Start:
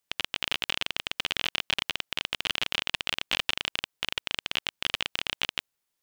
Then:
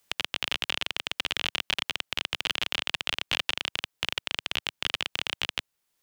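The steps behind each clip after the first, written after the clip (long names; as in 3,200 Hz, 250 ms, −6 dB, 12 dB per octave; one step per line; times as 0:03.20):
multiband upward and downward compressor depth 40%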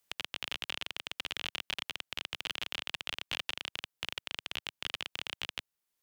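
parametric band 14,000 Hz +3 dB 0.76 octaves
level −8.5 dB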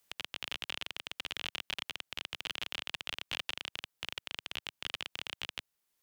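brickwall limiter −23.5 dBFS, peak gain reduction 7.5 dB
level +3.5 dB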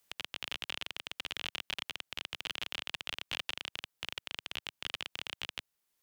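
no processing that can be heard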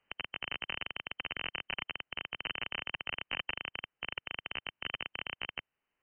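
linear-phase brick-wall low-pass 3,100 Hz
level +3 dB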